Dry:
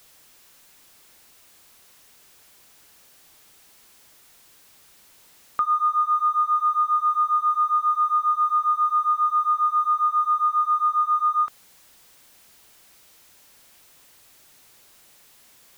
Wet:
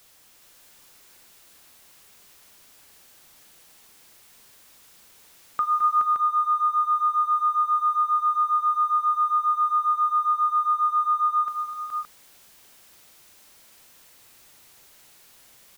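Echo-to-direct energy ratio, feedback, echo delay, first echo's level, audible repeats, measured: −1.0 dB, repeats not evenly spaced, 41 ms, −14.0 dB, 5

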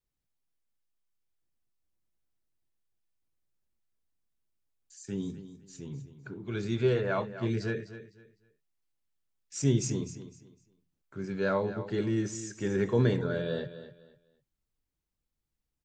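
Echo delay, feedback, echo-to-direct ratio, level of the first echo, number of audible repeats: 253 ms, 26%, −12.5 dB, −13.0 dB, 2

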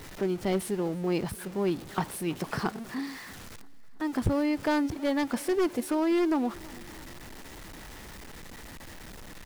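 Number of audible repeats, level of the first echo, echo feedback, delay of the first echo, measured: 3, −23.0 dB, 56%, 327 ms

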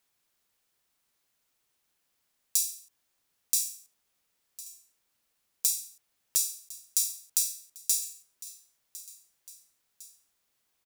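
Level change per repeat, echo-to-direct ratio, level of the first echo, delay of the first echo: −5.0 dB, −17.0 dB, −18.0 dB, 1,055 ms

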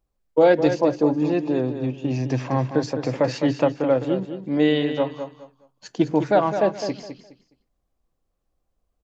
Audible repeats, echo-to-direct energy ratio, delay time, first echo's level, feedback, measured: 3, −8.5 dB, 208 ms, −9.0 dB, 24%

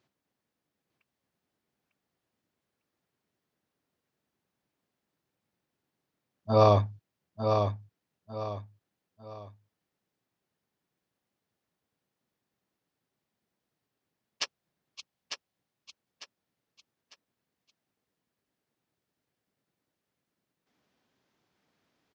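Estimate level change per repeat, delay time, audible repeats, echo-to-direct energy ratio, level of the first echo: −9.5 dB, 900 ms, 3, −5.5 dB, −6.0 dB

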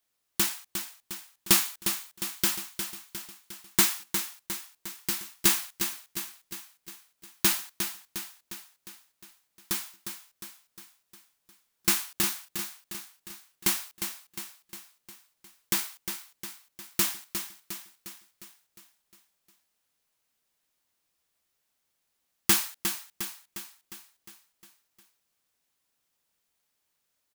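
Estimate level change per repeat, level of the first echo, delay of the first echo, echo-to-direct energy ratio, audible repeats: −5.0 dB, −8.0 dB, 356 ms, −6.5 dB, 6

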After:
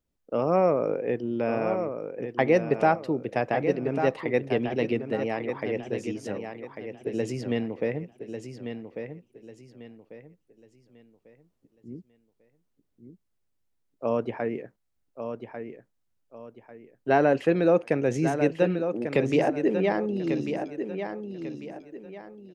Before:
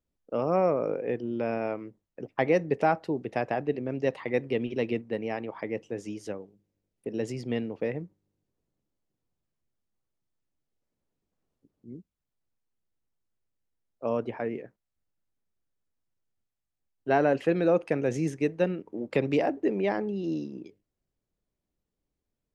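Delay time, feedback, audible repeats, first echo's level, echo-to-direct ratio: 1,145 ms, 32%, 3, −8.0 dB, −7.5 dB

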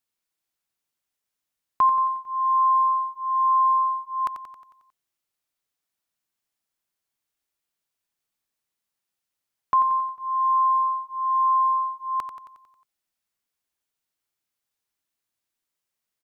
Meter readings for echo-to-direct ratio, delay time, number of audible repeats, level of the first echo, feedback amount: −8.0 dB, 90 ms, 6, −9.5 dB, 56%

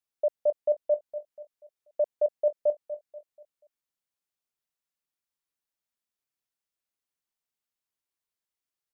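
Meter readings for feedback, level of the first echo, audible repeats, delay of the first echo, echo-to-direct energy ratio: 38%, −12.0 dB, 3, 242 ms, −11.5 dB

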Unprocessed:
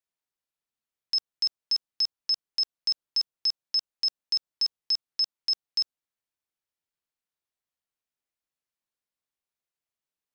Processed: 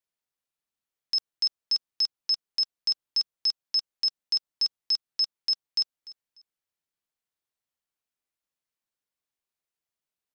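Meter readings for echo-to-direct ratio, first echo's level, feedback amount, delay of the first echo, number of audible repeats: −18.5 dB, −19.0 dB, 25%, 296 ms, 2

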